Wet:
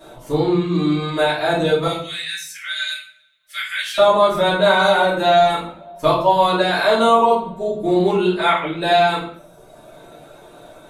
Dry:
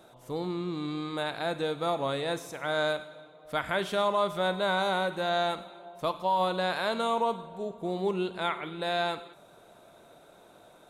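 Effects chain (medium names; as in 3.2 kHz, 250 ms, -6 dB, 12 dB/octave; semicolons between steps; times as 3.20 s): 1.86–3.98 s: inverse Chebyshev high-pass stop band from 920 Hz, stop band 40 dB; reverb removal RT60 1.2 s; simulated room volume 75 m³, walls mixed, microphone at 2.7 m; trim +3.5 dB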